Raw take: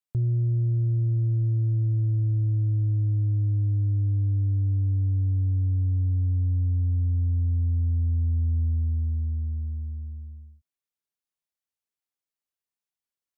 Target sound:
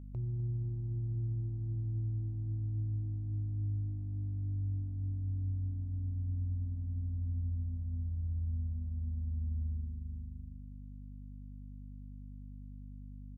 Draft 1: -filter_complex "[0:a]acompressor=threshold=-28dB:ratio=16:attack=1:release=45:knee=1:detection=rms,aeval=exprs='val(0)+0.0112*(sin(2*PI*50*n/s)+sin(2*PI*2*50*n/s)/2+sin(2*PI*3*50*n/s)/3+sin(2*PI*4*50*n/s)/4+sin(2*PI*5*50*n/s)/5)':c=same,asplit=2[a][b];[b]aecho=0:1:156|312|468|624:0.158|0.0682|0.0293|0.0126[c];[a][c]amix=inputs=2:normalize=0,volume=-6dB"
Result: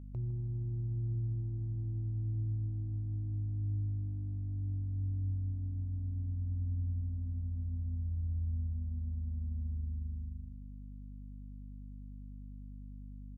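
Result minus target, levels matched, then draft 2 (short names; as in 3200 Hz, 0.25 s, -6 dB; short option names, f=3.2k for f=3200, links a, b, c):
echo 96 ms early
-filter_complex "[0:a]acompressor=threshold=-28dB:ratio=16:attack=1:release=45:knee=1:detection=rms,aeval=exprs='val(0)+0.0112*(sin(2*PI*50*n/s)+sin(2*PI*2*50*n/s)/2+sin(2*PI*3*50*n/s)/3+sin(2*PI*4*50*n/s)/4+sin(2*PI*5*50*n/s)/5)':c=same,asplit=2[a][b];[b]aecho=0:1:252|504|756|1008:0.158|0.0682|0.0293|0.0126[c];[a][c]amix=inputs=2:normalize=0,volume=-6dB"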